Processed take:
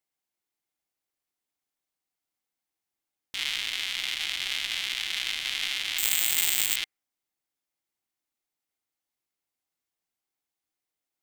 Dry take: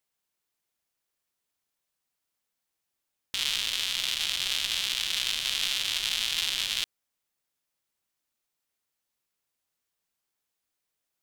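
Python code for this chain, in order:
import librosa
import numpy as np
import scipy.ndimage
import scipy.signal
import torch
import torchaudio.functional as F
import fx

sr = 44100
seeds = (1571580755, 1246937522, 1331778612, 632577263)

y = fx.dynamic_eq(x, sr, hz=2000.0, q=1.1, threshold_db=-44.0, ratio=4.0, max_db=8)
y = fx.resample_bad(y, sr, factor=4, down='none', up='zero_stuff', at=(5.98, 6.76))
y = fx.small_body(y, sr, hz=(310.0, 770.0, 2100.0), ring_ms=25, db=6)
y = F.gain(torch.from_numpy(y), -5.5).numpy()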